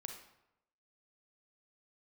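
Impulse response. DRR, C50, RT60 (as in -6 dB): 3.5 dB, 5.0 dB, 0.85 s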